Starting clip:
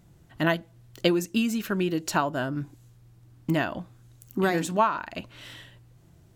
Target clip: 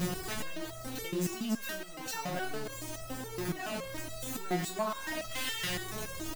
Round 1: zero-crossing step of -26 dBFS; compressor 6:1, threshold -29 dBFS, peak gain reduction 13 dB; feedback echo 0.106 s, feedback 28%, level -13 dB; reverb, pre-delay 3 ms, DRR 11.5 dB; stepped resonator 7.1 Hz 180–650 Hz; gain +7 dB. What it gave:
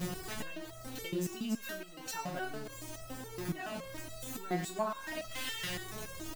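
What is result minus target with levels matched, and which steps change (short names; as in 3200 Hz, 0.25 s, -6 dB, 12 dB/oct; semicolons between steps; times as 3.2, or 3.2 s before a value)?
zero-crossing step: distortion -7 dB
change: zero-crossing step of -15 dBFS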